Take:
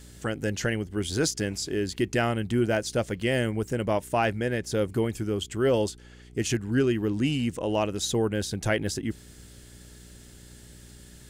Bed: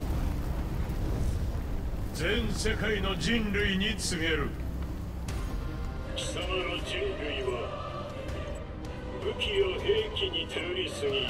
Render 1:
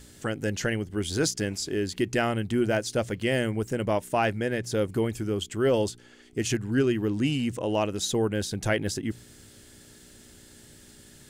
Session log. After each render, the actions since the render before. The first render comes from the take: de-hum 60 Hz, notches 3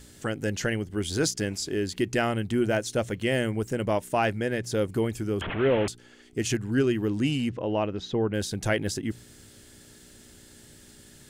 2.59–3.49 s: band-stop 4.8 kHz; 5.41–5.88 s: one-bit delta coder 16 kbps, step -25.5 dBFS; 7.49–8.34 s: distance through air 260 m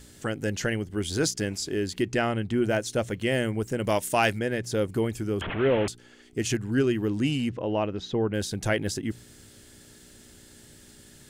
2.01–2.62 s: treble shelf 12 kHz -> 6.7 kHz -11.5 dB; 3.84–4.39 s: treble shelf 2.4 kHz +11.5 dB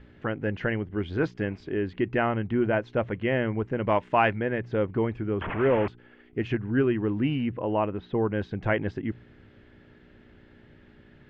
low-pass 2.5 kHz 24 dB/octave; dynamic bell 1 kHz, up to +6 dB, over -46 dBFS, Q 2.9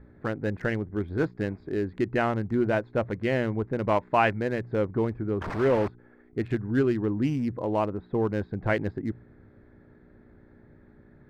local Wiener filter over 15 samples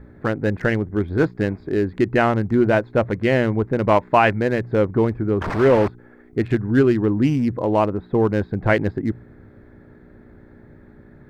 trim +8 dB; peak limiter -3 dBFS, peak gain reduction 2.5 dB

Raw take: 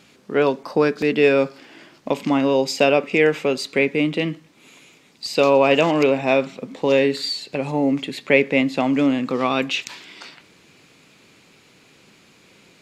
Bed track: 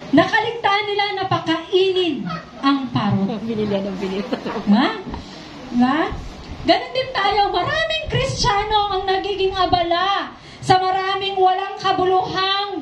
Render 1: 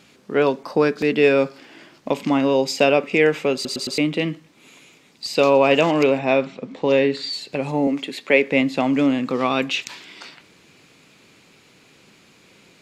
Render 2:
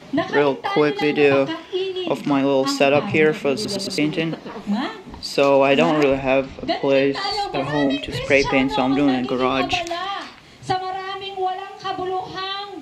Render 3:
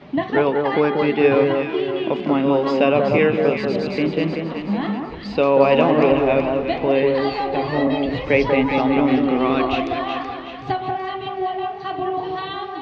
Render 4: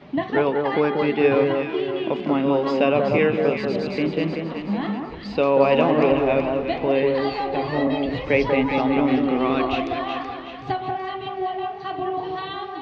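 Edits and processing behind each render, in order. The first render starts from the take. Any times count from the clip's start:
3.54 s: stutter in place 0.11 s, 4 plays; 6.19–7.33 s: distance through air 83 m; 7.87–8.52 s: high-pass 250 Hz
add bed track -8 dB
distance through air 280 m; echo whose repeats swap between lows and highs 188 ms, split 1.5 kHz, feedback 67%, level -3 dB
trim -2.5 dB

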